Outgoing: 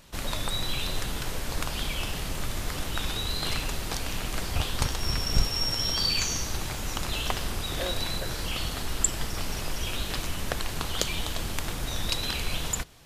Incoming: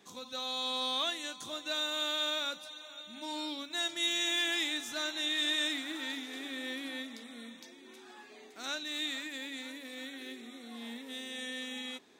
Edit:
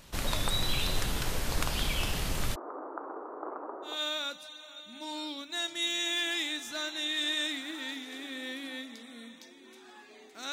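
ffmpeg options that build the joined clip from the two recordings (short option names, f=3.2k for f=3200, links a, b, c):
-filter_complex "[0:a]asplit=3[a][b][c];[a]afade=t=out:st=2.54:d=0.02[d];[b]asuperpass=centerf=620:order=12:qfactor=0.62,afade=t=in:st=2.54:d=0.02,afade=t=out:st=4.02:d=0.02[e];[c]afade=t=in:st=4.02:d=0.02[f];[d][e][f]amix=inputs=3:normalize=0,apad=whole_dur=10.52,atrim=end=10.52,atrim=end=4.02,asetpts=PTS-STARTPTS[g];[1:a]atrim=start=2.03:end=8.73,asetpts=PTS-STARTPTS[h];[g][h]acrossfade=d=0.2:c1=tri:c2=tri"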